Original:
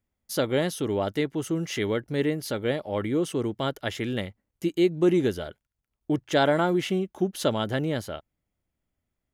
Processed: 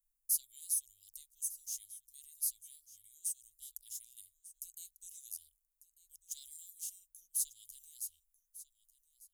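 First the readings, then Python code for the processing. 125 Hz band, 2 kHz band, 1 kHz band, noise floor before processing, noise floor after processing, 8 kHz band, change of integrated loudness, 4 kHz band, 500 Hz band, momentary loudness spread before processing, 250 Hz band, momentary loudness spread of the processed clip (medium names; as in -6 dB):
under -40 dB, under -40 dB, under -40 dB, -83 dBFS, -83 dBFS, +4.0 dB, -13.0 dB, -20.5 dB, under -40 dB, 10 LU, under -40 dB, 19 LU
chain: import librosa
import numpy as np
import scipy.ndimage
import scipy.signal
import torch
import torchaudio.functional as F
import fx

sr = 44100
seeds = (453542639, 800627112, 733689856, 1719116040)

p1 = scipy.signal.sosfilt(scipy.signal.cheby2(4, 80, [140.0, 1500.0], 'bandstop', fs=sr, output='sos'), x)
p2 = fx.high_shelf(p1, sr, hz=9500.0, db=5.0)
p3 = p2 + fx.echo_single(p2, sr, ms=1196, db=-17.5, dry=0)
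y = p3 * librosa.db_to_amplitude(4.5)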